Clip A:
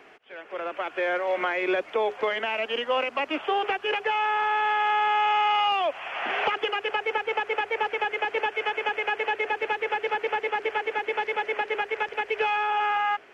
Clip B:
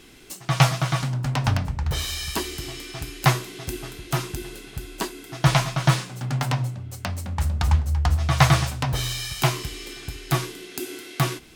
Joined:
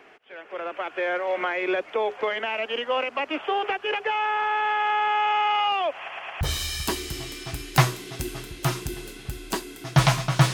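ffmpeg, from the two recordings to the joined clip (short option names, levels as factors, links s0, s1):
-filter_complex "[0:a]apad=whole_dur=10.53,atrim=end=10.53,asplit=4[s0][s1][s2][s3];[s0]atrim=end=6.082[s4];[s1]atrim=start=5.968:end=6.082[s5];[s2]atrim=start=5.968:end=6.082[s6];[s3]atrim=start=5.968:end=6.082[s7];[1:a]atrim=start=1.888:end=6.01[s8];[s4][s5]acrossfade=d=0.004:c1=hsin:c2=hsin[s9];[s9][s6]acrossfade=d=0.004:c1=hsin:c2=hsin[s10];[s10][s7]acrossfade=d=0.004:c1=hsin:c2=hsin[s11];[s11][s8]acrossfade=d=0.004:c1=hsin:c2=hsin"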